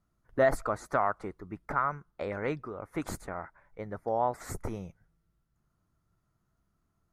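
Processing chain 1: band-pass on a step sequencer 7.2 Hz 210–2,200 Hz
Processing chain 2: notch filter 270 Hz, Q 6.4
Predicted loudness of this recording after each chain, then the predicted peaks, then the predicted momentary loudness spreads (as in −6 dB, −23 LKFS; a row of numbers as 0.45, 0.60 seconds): −42.5, −33.0 LKFS; −20.5, −13.5 dBFS; 17, 15 LU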